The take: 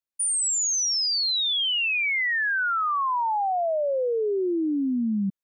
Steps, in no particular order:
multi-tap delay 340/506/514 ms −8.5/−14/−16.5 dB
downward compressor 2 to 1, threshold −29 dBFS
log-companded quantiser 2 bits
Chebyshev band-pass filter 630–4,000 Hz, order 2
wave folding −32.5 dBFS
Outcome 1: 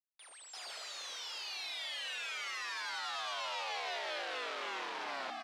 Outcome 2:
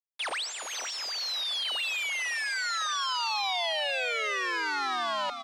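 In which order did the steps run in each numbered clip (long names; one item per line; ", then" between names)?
downward compressor, then log-companded quantiser, then multi-tap delay, then wave folding, then Chebyshev band-pass filter
wave folding, then log-companded quantiser, then Chebyshev band-pass filter, then downward compressor, then multi-tap delay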